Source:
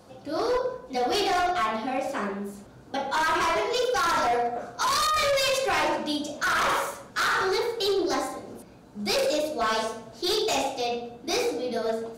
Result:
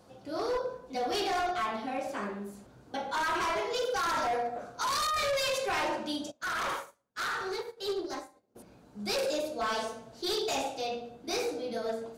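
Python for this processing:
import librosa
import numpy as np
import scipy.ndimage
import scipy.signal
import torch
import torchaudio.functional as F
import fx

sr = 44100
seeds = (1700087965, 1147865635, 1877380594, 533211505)

y = fx.upward_expand(x, sr, threshold_db=-43.0, expansion=2.5, at=(6.3, 8.55), fade=0.02)
y = y * 10.0 ** (-6.0 / 20.0)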